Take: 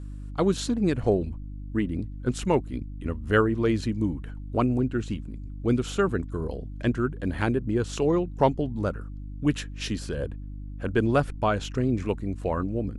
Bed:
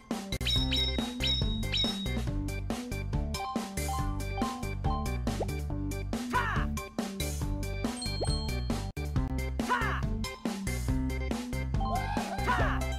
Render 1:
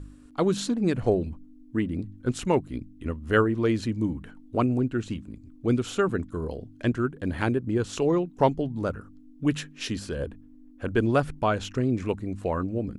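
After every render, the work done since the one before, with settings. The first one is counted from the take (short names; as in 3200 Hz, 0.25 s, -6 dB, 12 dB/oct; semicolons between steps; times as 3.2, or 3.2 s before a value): de-hum 50 Hz, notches 4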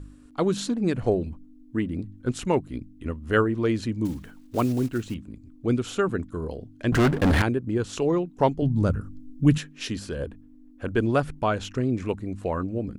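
4.05–5.16 block floating point 5-bit; 6.92–7.42 sample leveller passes 5; 8.62–9.58 tone controls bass +12 dB, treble +5 dB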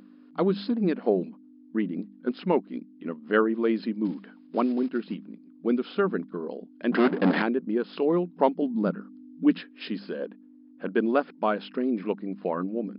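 FFT band-pass 170–5200 Hz; high shelf 2600 Hz -7 dB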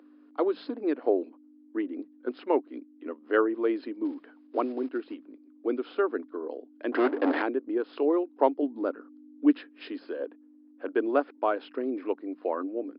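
elliptic high-pass 280 Hz, stop band 40 dB; high shelf 3200 Hz -11.5 dB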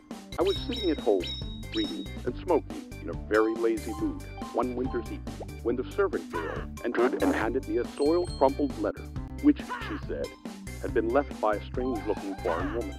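add bed -6.5 dB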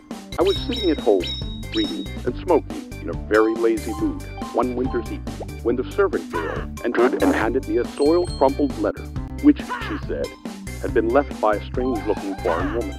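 gain +7.5 dB; limiter -3 dBFS, peak gain reduction 2.5 dB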